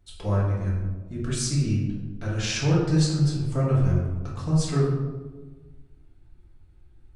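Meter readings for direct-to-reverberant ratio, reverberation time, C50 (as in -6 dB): -7.0 dB, 1.3 s, 1.5 dB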